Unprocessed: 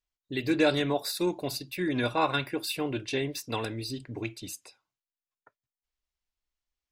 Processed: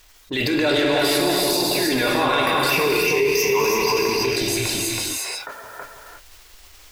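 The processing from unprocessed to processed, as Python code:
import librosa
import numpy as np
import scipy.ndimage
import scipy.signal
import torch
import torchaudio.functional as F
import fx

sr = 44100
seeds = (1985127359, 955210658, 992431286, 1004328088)

y = fx.peak_eq(x, sr, hz=140.0, db=-11.5, octaves=1.7)
y = fx.transient(y, sr, attack_db=-11, sustain_db=7)
y = fx.leveller(y, sr, passes=1)
y = fx.ripple_eq(y, sr, per_octave=0.8, db=17, at=(2.69, 4.01))
y = y + 10.0 ** (-4.5 / 20.0) * np.pad(y, (int(325 * sr / 1000.0), 0))[:len(y)]
y = fx.rev_gated(y, sr, seeds[0], gate_ms=380, shape='flat', drr_db=0.0)
y = fx.env_flatten(y, sr, amount_pct=70)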